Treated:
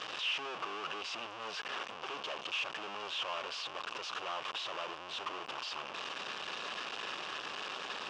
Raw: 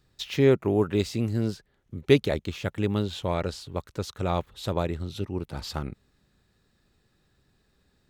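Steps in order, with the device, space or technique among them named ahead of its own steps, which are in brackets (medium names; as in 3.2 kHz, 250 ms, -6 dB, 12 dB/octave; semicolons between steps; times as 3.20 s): home computer beeper (one-bit comparator; cabinet simulation 610–5000 Hz, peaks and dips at 1.1 kHz +7 dB, 2 kHz -6 dB, 2.8 kHz +9 dB, 4.2 kHz -7 dB); trim -8 dB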